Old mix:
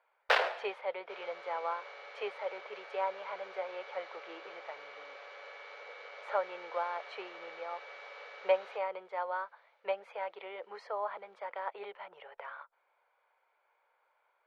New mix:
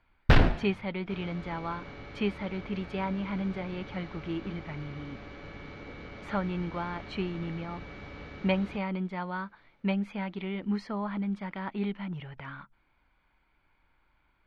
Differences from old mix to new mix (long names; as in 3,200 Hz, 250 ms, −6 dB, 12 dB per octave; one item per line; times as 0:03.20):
speech: add tilt shelving filter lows −8.5 dB, about 1,100 Hz
master: remove elliptic high-pass filter 490 Hz, stop band 50 dB